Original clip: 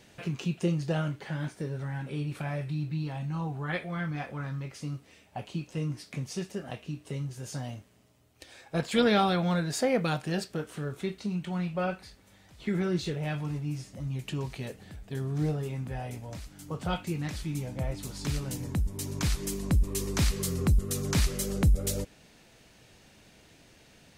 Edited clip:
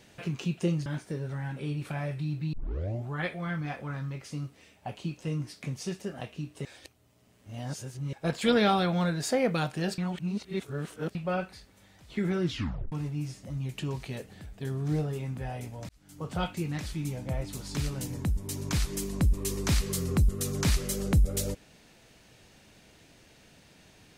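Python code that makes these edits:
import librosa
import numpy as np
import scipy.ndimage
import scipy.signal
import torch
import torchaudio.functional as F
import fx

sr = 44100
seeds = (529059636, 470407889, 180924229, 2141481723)

y = fx.edit(x, sr, fx.cut(start_s=0.86, length_s=0.5),
    fx.tape_start(start_s=3.03, length_s=0.57),
    fx.reverse_span(start_s=7.15, length_s=1.48),
    fx.reverse_span(start_s=10.48, length_s=1.17),
    fx.tape_stop(start_s=12.94, length_s=0.48),
    fx.fade_in_span(start_s=16.39, length_s=0.4), tone=tone)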